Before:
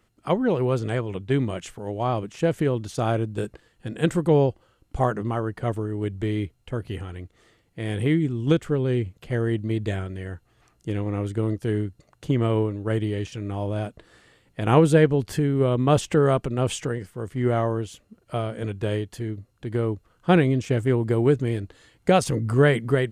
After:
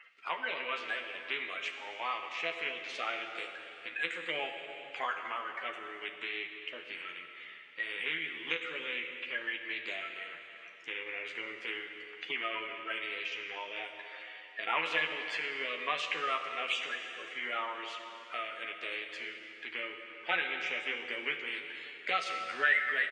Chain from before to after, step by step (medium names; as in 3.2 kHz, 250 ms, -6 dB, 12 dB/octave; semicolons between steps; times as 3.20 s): coarse spectral quantiser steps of 30 dB; resonant high-pass 2.3 kHz, resonance Q 3.4; tape spacing loss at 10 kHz 35 dB; doubling 12 ms -5 dB; plate-style reverb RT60 2.2 s, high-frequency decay 0.95×, DRR 5 dB; three bands compressed up and down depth 40%; trim +6 dB